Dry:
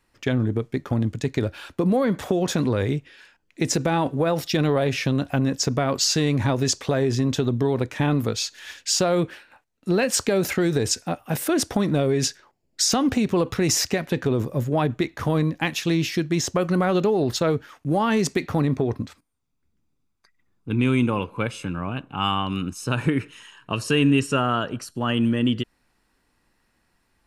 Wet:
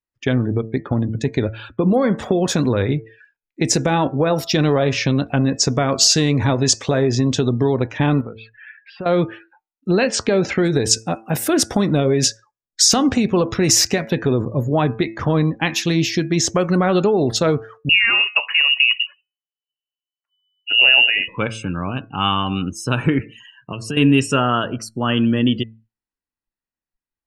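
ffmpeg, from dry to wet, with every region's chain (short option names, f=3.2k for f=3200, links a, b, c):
-filter_complex "[0:a]asettb=1/sr,asplit=3[a][b][c];[a]atrim=end=8.214[d];[b]atrim=start=8.21:end=9.06,asetpts=PTS-STARTPTS,afade=t=in:d=0.004:c=qsin,afade=t=out:st=0.846:d=0.004:c=qsin,lowpass=f=2.5k:w=0.5412,lowpass=f=2.5k:w=1.3066,acompressor=threshold=-39dB:ratio=2:attack=3.2:release=140:knee=1:detection=peak[e];[c]atrim=start=9.056[f];[d][e]acrossfade=d=0.004:c1=hsin:c2=qsin[g];[g][f]acrossfade=d=0.004:c1=qsin:c2=hsin,asettb=1/sr,asplit=3[h][i][j];[h]atrim=end=10.094[k];[i]atrim=start=10.09:end=10.65,asetpts=PTS-STARTPTS,afade=t=in:d=0.004:c=qsin,afade=t=out:st=0.556:d=0.004:c=qsin,lowpass=5.9k,highshelf=f=4k:g=-4.5[l];[j]atrim=start=10.646[m];[k][l]acrossfade=d=0.004:c1=hsin:c2=qsin[n];[n][m]acrossfade=d=0.004:c1=qsin:c2=hsin,asettb=1/sr,asplit=3[o][p][q];[o]atrim=end=17.894[r];[p]atrim=start=17.89:end=21.28,asetpts=PTS-STARTPTS,afade=t=in:d=0.004:c=qsin,afade=t=out:st=3.386:d=0.004:c=qsin,aphaser=in_gain=1:out_gain=1:delay=4.6:decay=0.24:speed=1:type=sinusoidal,lowpass=f=2.6k:t=q:w=0.5098,lowpass=f=2.6k:t=q:w=0.6013,lowpass=f=2.6k:t=q:w=0.9,lowpass=f=2.6k:t=q:w=2.563,afreqshift=-3000[s];[q]atrim=start=21.276[t];[r][s]acrossfade=d=0.004:c1=hsin:c2=qsin[u];[u][t]acrossfade=d=0.004:c1=qsin:c2=hsin,asettb=1/sr,asplit=3[v][w][x];[v]atrim=end=23.194[y];[w]atrim=start=23.19:end=23.97,asetpts=PTS-STARTPTS,afade=t=in:d=0.004:c=qsin,afade=t=out:st=0.776:d=0.004:c=qsin,highpass=f=59:w=0.5412,highpass=f=59:w=1.3066,lowshelf=f=380:g=5.5,acompressor=threshold=-34dB:ratio=2:attack=3.2:release=140:knee=1:detection=peak[z];[x]atrim=start=23.966[aa];[y][z]acrossfade=d=0.004:c1=hsin:c2=qsin[ab];[ab][aa]acrossfade=d=0.004:c1=qsin:c2=hsin,bandreject=f=111.4:t=h:w=4,bandreject=f=222.8:t=h:w=4,bandreject=f=334.2:t=h:w=4,bandreject=f=445.6:t=h:w=4,bandreject=f=557:t=h:w=4,bandreject=f=668.4:t=h:w=4,bandreject=f=779.8:t=h:w=4,bandreject=f=891.2:t=h:w=4,bandreject=f=1.0026k:t=h:w=4,bandreject=f=1.114k:t=h:w=4,bandreject=f=1.2254k:t=h:w=4,bandreject=f=1.3368k:t=h:w=4,bandreject=f=1.4482k:t=h:w=4,bandreject=f=1.5596k:t=h:w=4,bandreject=f=1.671k:t=h:w=4,bandreject=f=1.7824k:t=h:w=4,bandreject=f=1.8938k:t=h:w=4,bandreject=f=2.0052k:t=h:w=4,bandreject=f=2.1166k:t=h:w=4,bandreject=f=2.228k:t=h:w=4,bandreject=f=2.3394k:t=h:w=4,bandreject=f=2.4508k:t=h:w=4,bandreject=f=2.5622k:t=h:w=4,afftdn=nr=32:nf=-43,adynamicequalizer=threshold=0.0158:dfrequency=5900:dqfactor=0.91:tfrequency=5900:tqfactor=0.91:attack=5:release=100:ratio=0.375:range=2:mode=boostabove:tftype=bell,volume=4.5dB"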